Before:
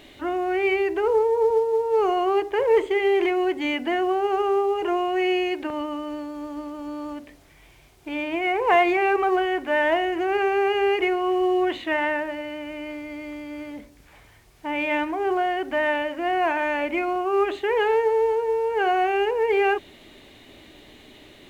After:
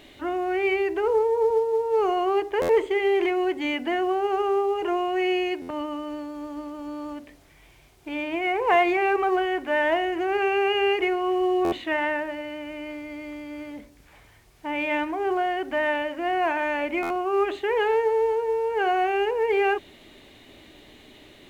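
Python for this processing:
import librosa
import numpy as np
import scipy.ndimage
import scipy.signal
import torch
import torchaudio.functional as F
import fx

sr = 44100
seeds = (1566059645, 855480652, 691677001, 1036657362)

y = fx.peak_eq(x, sr, hz=2700.0, db=9.0, octaves=0.26, at=(10.42, 10.93))
y = fx.buffer_glitch(y, sr, at_s=(2.61, 5.61, 11.64, 17.02), block=512, repeats=6)
y = F.gain(torch.from_numpy(y), -1.5).numpy()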